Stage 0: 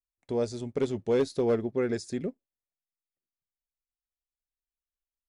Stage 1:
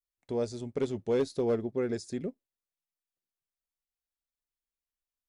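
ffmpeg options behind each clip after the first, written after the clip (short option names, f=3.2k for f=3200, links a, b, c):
-af "adynamicequalizer=threshold=0.00398:dfrequency=1900:dqfactor=0.97:tfrequency=1900:tqfactor=0.97:attack=5:release=100:ratio=0.375:range=2:mode=cutabove:tftype=bell,volume=-2.5dB"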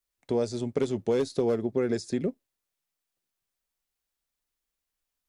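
-filter_complex "[0:a]acrossover=split=110|4900[a][b][c];[a]acompressor=threshold=-57dB:ratio=4[d];[b]acompressor=threshold=-31dB:ratio=4[e];[c]acompressor=threshold=-53dB:ratio=4[f];[d][e][f]amix=inputs=3:normalize=0,volume=8dB"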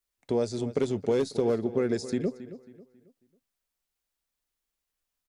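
-filter_complex "[0:a]asplit=2[a][b];[b]adelay=272,lowpass=f=3.7k:p=1,volume=-14dB,asplit=2[c][d];[d]adelay=272,lowpass=f=3.7k:p=1,volume=0.37,asplit=2[e][f];[f]adelay=272,lowpass=f=3.7k:p=1,volume=0.37,asplit=2[g][h];[h]adelay=272,lowpass=f=3.7k:p=1,volume=0.37[i];[a][c][e][g][i]amix=inputs=5:normalize=0"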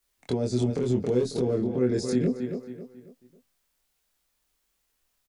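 -filter_complex "[0:a]acrossover=split=390[a][b];[b]acompressor=threshold=-40dB:ratio=4[c];[a][c]amix=inputs=2:normalize=0,alimiter=level_in=3dB:limit=-24dB:level=0:latency=1:release=53,volume=-3dB,asplit=2[d][e];[e]adelay=24,volume=-2dB[f];[d][f]amix=inputs=2:normalize=0,volume=8dB"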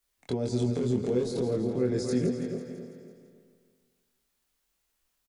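-af "aecho=1:1:166|332|498|664|830|996|1162:0.335|0.198|0.117|0.0688|0.0406|0.0239|0.0141,volume=-3dB"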